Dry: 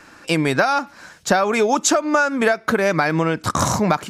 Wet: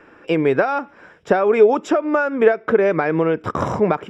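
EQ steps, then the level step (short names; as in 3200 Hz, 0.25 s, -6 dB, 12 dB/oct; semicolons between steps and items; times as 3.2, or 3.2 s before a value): polynomial smoothing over 25 samples; bell 430 Hz +11.5 dB 0.77 oct; -4.0 dB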